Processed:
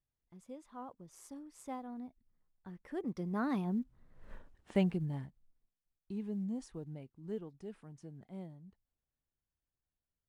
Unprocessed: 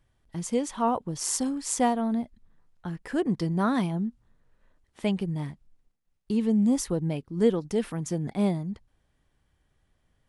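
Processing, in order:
one scale factor per block 7 bits
source passing by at 0:04.32, 23 m/s, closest 1.2 metres
high-shelf EQ 2,700 Hz −9 dB
level +16 dB

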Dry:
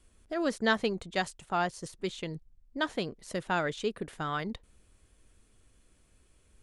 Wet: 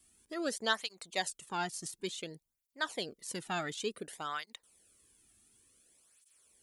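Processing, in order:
first-order pre-emphasis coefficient 0.8
through-zero flanger with one copy inverted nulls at 0.56 Hz, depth 2.1 ms
level +9 dB

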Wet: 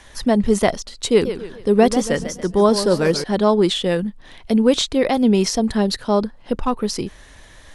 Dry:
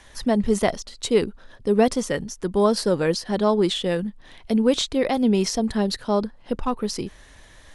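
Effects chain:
0:01.07–0:03.24: feedback echo with a swinging delay time 141 ms, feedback 41%, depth 147 cents, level −10.5 dB
level +4 dB

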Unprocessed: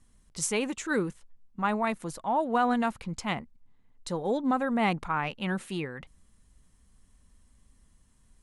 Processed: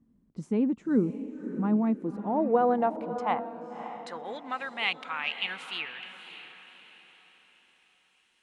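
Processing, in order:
band-pass filter sweep 240 Hz → 3,000 Hz, 0:01.88–0:04.74
feedback delay with all-pass diffusion 581 ms, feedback 41%, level −10.5 dB
level +9 dB

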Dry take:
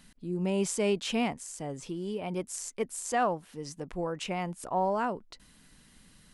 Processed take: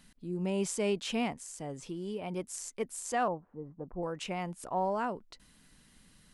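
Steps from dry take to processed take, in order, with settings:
0:03.28–0:04.03: low-pass filter 1,100 Hz 24 dB per octave
level −3 dB

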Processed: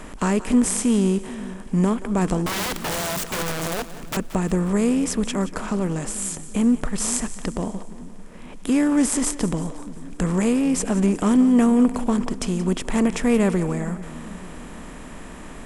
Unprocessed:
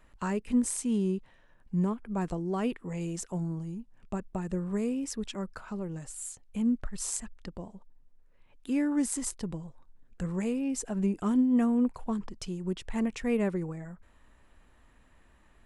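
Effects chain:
compressor on every frequency bin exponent 0.6
0:02.46–0:04.17: wrap-around overflow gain 28.5 dB
echo with a time of its own for lows and highs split 310 Hz, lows 437 ms, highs 177 ms, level −15 dB
level +7 dB

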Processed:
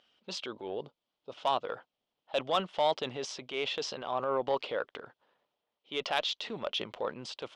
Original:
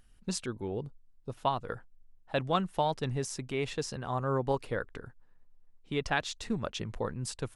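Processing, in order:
loudspeaker in its box 450–4,900 Hz, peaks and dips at 590 Hz +5 dB, 1,700 Hz −7 dB, 3,200 Hz +9 dB
harmonic generator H 5 −22 dB, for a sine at −13 dBFS
transient designer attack −4 dB, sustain +5 dB

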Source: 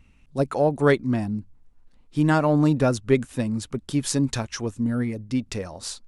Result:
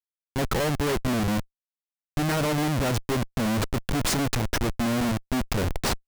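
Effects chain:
comparator with hysteresis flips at −30 dBFS

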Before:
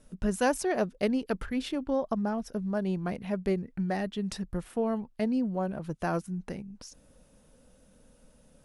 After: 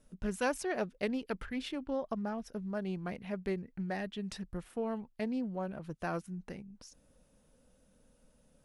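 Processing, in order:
dynamic equaliser 2,400 Hz, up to +5 dB, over −50 dBFS, Q 0.83
highs frequency-modulated by the lows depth 0.11 ms
level −7 dB

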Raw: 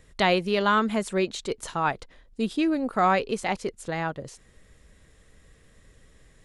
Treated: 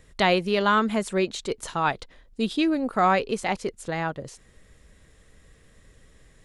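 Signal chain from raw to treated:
0:01.70–0:02.66: dynamic equaliser 3,700 Hz, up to +6 dB, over −49 dBFS, Q 1.7
level +1 dB

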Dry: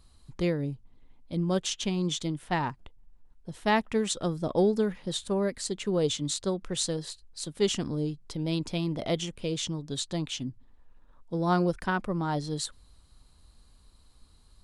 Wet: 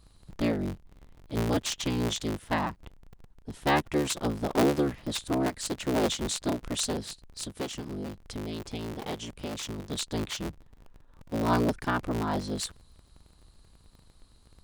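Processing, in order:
sub-harmonics by changed cycles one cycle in 3, inverted
0:07.44–0:09.79: downward compressor 4 to 1, threshold −33 dBFS, peak gain reduction 11 dB

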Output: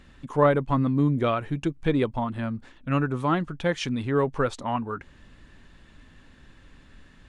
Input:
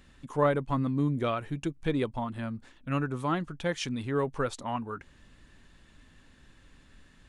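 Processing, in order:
low-pass filter 4,000 Hz 6 dB per octave
level +5.5 dB

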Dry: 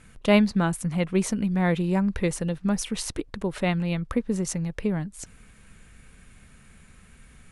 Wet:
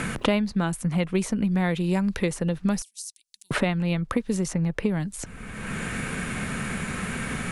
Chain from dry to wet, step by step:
0:02.82–0:03.51: inverse Chebyshev high-pass filter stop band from 1,300 Hz, stop band 70 dB
multiband upward and downward compressor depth 100%

